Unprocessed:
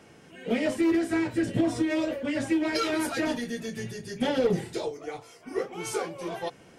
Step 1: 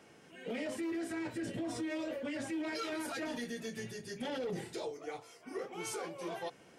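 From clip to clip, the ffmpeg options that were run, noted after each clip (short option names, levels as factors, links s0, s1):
-af "lowshelf=f=130:g=-10,alimiter=level_in=1.26:limit=0.0631:level=0:latency=1:release=30,volume=0.794,volume=0.562"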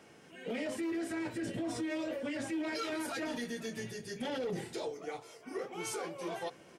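-af "aecho=1:1:493:0.0891,volume=1.19"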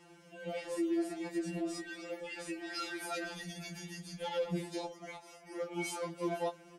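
-af "afftfilt=real='re*2.83*eq(mod(b,8),0)':imag='im*2.83*eq(mod(b,8),0)':win_size=2048:overlap=0.75,volume=1.12"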